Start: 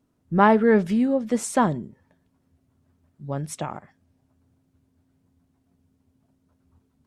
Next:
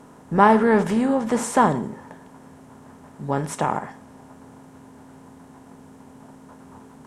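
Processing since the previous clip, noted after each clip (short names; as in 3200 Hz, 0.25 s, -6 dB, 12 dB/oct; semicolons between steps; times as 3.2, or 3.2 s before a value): per-bin compression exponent 0.6; bell 930 Hz +5.5 dB 0.29 oct; reverb, pre-delay 3 ms, DRR 11.5 dB; gain -1 dB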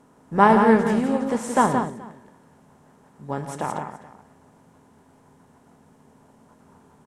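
on a send: tapped delay 0.113/0.172/0.427 s -11.5/-5/-17 dB; on the sum: upward expander 1.5:1, over -29 dBFS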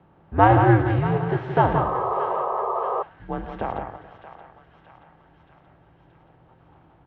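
mistuned SSB -100 Hz 150–3500 Hz; thinning echo 0.627 s, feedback 66%, high-pass 1100 Hz, level -10.5 dB; painted sound noise, 1.75–3.03, 360–1300 Hz -25 dBFS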